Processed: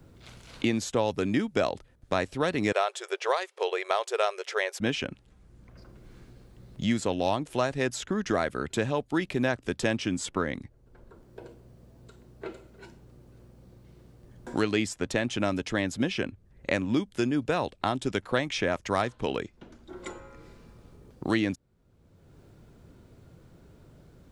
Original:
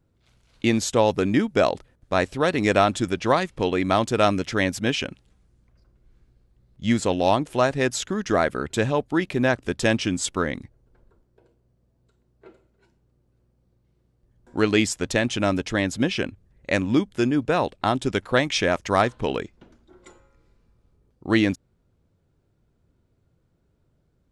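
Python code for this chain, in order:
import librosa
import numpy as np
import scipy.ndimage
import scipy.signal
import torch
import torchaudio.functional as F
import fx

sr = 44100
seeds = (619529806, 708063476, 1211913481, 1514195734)

y = fx.brickwall_highpass(x, sr, low_hz=370.0, at=(2.72, 4.8))
y = fx.band_squash(y, sr, depth_pct=70)
y = y * librosa.db_to_amplitude(-6.0)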